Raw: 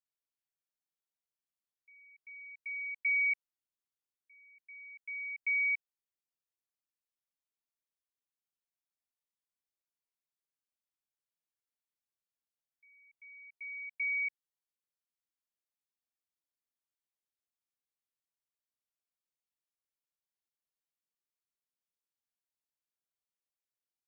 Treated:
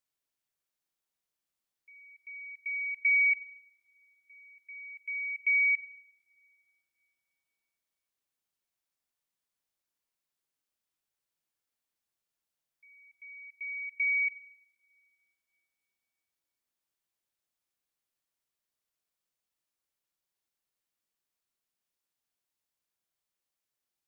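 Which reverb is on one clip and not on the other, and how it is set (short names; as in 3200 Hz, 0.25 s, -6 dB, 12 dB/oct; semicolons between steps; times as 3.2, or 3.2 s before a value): two-slope reverb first 0.92 s, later 3 s, from -20 dB, DRR 15 dB; gain +5.5 dB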